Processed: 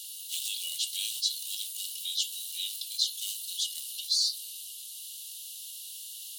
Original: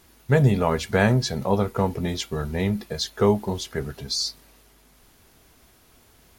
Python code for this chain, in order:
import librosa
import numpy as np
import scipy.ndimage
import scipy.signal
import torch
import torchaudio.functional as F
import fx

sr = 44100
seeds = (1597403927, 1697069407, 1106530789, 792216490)

p1 = fx.quant_float(x, sr, bits=2)
p2 = x + F.gain(torch.from_numpy(p1), -3.0).numpy()
p3 = scipy.signal.sosfilt(scipy.signal.cheby1(6, 6, 2800.0, 'highpass', fs=sr, output='sos'), p2)
p4 = fx.env_flatten(p3, sr, amount_pct=50)
y = F.gain(torch.from_numpy(p4), -2.5).numpy()